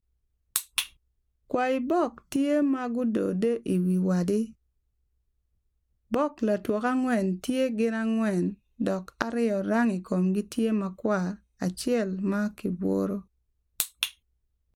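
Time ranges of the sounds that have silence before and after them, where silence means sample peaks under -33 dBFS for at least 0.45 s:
0.56–0.84 s
1.51–4.45 s
6.12–13.19 s
13.80–14.08 s

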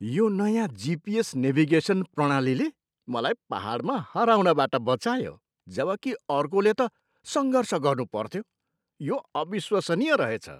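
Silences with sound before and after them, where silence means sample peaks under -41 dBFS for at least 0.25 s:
2.70–3.08 s
5.34–5.68 s
6.88–7.26 s
8.42–9.00 s

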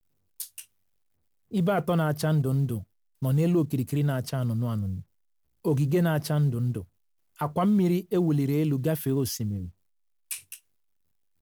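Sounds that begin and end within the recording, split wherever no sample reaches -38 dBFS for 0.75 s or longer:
1.52–10.56 s

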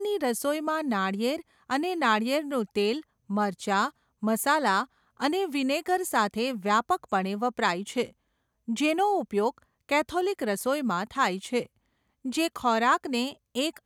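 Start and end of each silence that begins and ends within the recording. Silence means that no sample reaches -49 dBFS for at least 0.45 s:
8.11–8.68 s
11.66–12.25 s

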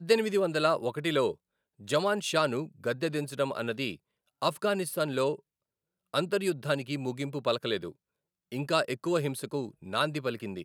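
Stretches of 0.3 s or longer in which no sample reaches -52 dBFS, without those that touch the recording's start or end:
1.35–1.79 s
3.96–4.42 s
5.40–6.13 s
7.92–8.52 s

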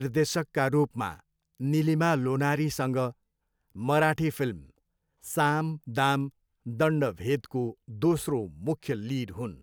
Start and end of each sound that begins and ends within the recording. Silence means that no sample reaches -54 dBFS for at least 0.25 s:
1.55–3.12 s
3.70–4.70 s
5.22–6.31 s

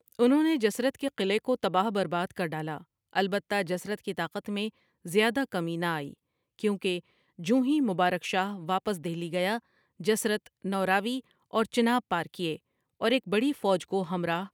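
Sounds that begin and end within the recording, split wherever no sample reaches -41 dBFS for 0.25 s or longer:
3.13–4.69 s
5.06–6.13 s
6.59–7.00 s
7.39–9.59 s
10.00–11.20 s
11.53–12.56 s

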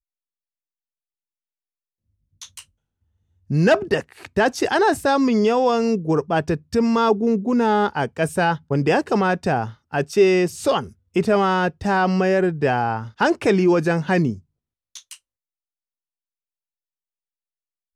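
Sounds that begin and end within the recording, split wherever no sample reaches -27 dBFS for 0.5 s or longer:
2.42–2.59 s
3.50–14.34 s
14.96–15.13 s

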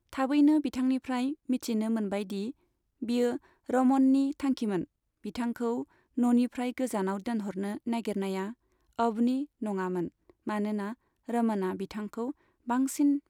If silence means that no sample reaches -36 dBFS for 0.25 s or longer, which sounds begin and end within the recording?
3.02–3.37 s
3.69–4.84 s
5.25–5.83 s
6.18–8.51 s
8.99–10.08 s
10.47–10.93 s
11.29–12.31 s

